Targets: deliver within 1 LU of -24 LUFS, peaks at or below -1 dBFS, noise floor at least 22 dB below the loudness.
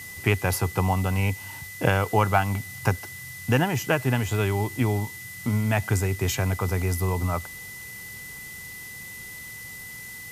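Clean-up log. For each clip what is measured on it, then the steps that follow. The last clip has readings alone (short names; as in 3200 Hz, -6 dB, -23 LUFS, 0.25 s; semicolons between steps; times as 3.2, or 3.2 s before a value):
steady tone 2000 Hz; tone level -39 dBFS; noise floor -40 dBFS; noise floor target -48 dBFS; loudness -25.5 LUFS; peak -3.5 dBFS; loudness target -24.0 LUFS
-> notch 2000 Hz, Q 30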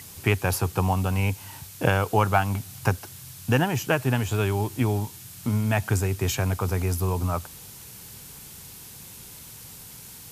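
steady tone none; noise floor -44 dBFS; noise floor target -48 dBFS
-> denoiser 6 dB, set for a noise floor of -44 dBFS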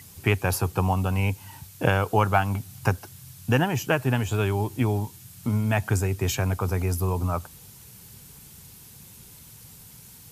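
noise floor -48 dBFS; loudness -25.5 LUFS; peak -4.0 dBFS; loudness target -24.0 LUFS
-> gain +1.5 dB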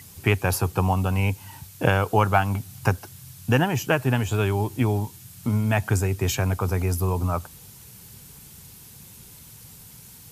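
loudness -24.0 LUFS; peak -2.5 dBFS; noise floor -47 dBFS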